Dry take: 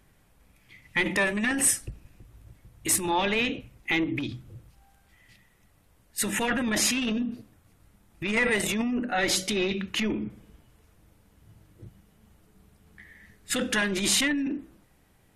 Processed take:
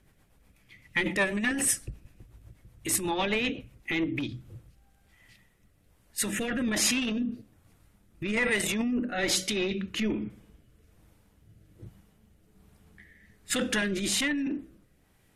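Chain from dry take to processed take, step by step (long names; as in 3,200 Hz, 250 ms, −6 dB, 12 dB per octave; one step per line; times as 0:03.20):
rotating-speaker cabinet horn 8 Hz, later 1.2 Hz, at 0:03.68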